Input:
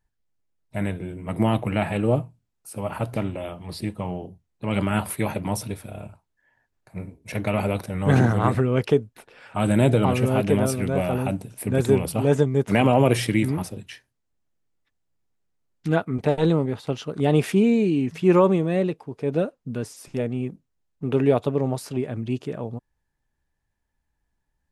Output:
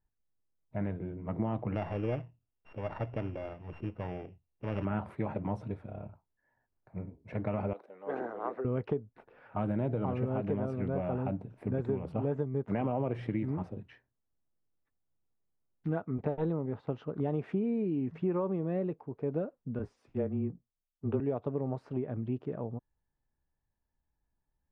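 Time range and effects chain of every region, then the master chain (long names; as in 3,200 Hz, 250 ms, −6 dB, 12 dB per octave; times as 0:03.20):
0:01.75–0:04.85: samples sorted by size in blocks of 16 samples + parametric band 200 Hz −7.5 dB 0.74 octaves + linearly interpolated sample-rate reduction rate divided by 4×
0:07.73–0:08.65: four-pole ladder high-pass 330 Hz, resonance 30% + multiband upward and downward expander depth 40%
0:19.79–0:21.20: frequency shifter −19 Hz + double-tracking delay 17 ms −10.5 dB + multiband upward and downward expander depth 70%
whole clip: low-pass filter 1,300 Hz 12 dB per octave; downward compressor, threshold −22 dBFS; level −6 dB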